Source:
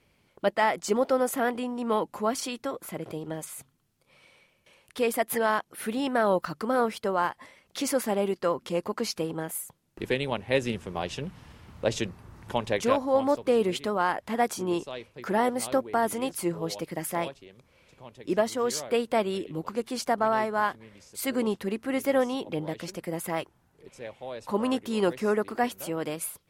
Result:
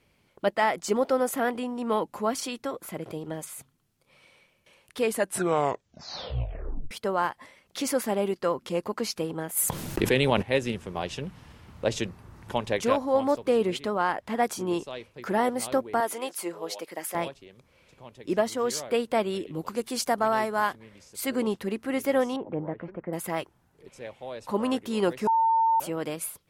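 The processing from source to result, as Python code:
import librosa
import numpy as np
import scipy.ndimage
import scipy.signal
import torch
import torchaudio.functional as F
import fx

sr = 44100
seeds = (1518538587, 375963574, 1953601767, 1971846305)

y = fx.env_flatten(x, sr, amount_pct=70, at=(9.56, 10.41), fade=0.02)
y = fx.high_shelf(y, sr, hz=8100.0, db=-6.0, at=(13.57, 14.43))
y = fx.highpass(y, sr, hz=430.0, slope=12, at=(16.0, 17.15))
y = fx.high_shelf(y, sr, hz=5200.0, db=8.5, at=(19.59, 20.73))
y = fx.lowpass(y, sr, hz=1700.0, slope=24, at=(22.36, 23.13))
y = fx.edit(y, sr, fx.tape_stop(start_s=5.01, length_s=1.9),
    fx.bleep(start_s=25.27, length_s=0.53, hz=903.0, db=-19.0), tone=tone)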